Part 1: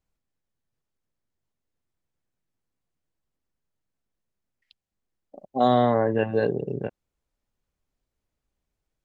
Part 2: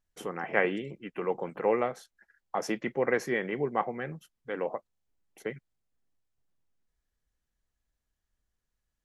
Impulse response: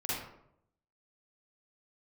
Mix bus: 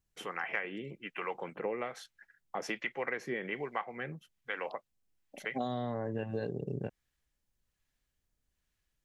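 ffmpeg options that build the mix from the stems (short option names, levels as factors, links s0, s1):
-filter_complex "[0:a]bass=f=250:g=6,treble=f=4000:g=10,volume=0.422[s0];[1:a]equalizer=f=2600:w=0.6:g=11,acrossover=split=610[s1][s2];[s1]aeval=exprs='val(0)*(1-0.7/2+0.7/2*cos(2*PI*1.2*n/s))':c=same[s3];[s2]aeval=exprs='val(0)*(1-0.7/2-0.7/2*cos(2*PI*1.2*n/s))':c=same[s4];[s3][s4]amix=inputs=2:normalize=0,volume=0.708[s5];[s0][s5]amix=inputs=2:normalize=0,acompressor=threshold=0.0282:ratio=12"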